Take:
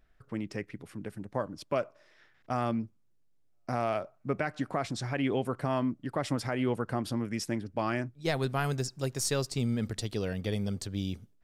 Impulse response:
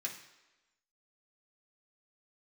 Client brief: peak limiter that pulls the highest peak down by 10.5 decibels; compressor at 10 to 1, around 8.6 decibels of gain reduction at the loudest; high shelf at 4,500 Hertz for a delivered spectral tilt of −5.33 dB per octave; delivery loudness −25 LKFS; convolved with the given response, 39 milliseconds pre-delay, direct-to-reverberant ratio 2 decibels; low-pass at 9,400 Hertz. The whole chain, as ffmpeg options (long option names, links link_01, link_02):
-filter_complex "[0:a]lowpass=9400,highshelf=frequency=4500:gain=-4,acompressor=threshold=-34dB:ratio=10,alimiter=level_in=7.5dB:limit=-24dB:level=0:latency=1,volume=-7.5dB,asplit=2[link_01][link_02];[1:a]atrim=start_sample=2205,adelay=39[link_03];[link_02][link_03]afir=irnorm=-1:irlink=0,volume=-2dB[link_04];[link_01][link_04]amix=inputs=2:normalize=0,volume=16.5dB"